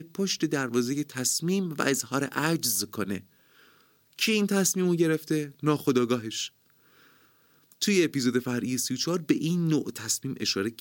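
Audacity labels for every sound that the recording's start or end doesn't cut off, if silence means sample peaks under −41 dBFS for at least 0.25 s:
4.130000	6.480000	sound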